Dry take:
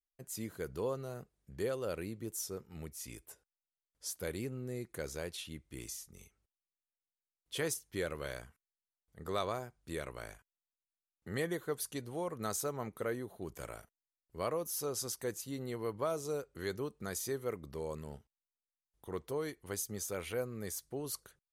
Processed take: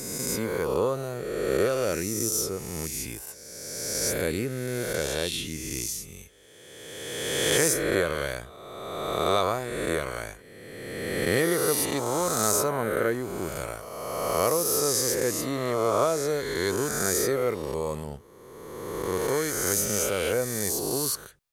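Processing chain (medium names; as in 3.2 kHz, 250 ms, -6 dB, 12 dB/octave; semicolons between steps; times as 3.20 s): reverse spectral sustain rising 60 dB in 1.98 s; trim +8.5 dB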